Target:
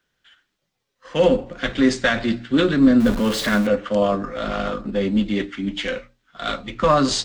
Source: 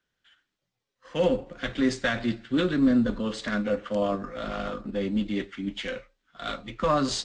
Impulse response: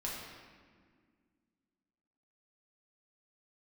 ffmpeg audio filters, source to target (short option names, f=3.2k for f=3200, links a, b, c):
-filter_complex "[0:a]asettb=1/sr,asplit=3[a][b][c];[a]atrim=end=3.004[d];[b]atrim=start=3:end=3.67,asetpts=PTS-STARTPTS,afade=t=in:d=0.004:c=qsin,afade=t=out:st=0.666:d=0.004:c=qsin,aeval=exprs='val(0)+0.5*0.0251*sgn(val(0))':c=same[e];[c]atrim=start=3.666[f];[d][e]acrossfade=d=0.004:c1=hsin:c2=qsin[g];[g][f]acrossfade=d=0.004:c1=qsin:c2=hsin,bandreject=f=60:t=h:w=6,bandreject=f=120:t=h:w=6,bandreject=f=180:t=h:w=6,bandreject=f=240:t=h:w=6,bandreject=f=300:t=h:w=6,volume=7.5dB"